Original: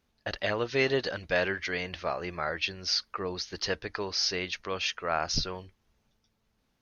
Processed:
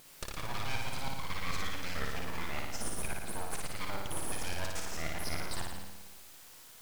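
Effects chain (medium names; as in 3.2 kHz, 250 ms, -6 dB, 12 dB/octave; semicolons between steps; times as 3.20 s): slices played last to first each 108 ms, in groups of 2; reverse; compression, threshold -38 dBFS, peak gain reduction 16 dB; reverse; full-wave rectifier; word length cut 10-bit, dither triangular; wow and flutter 19 cents; flutter echo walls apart 9.7 m, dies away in 1.1 s; trim +3.5 dB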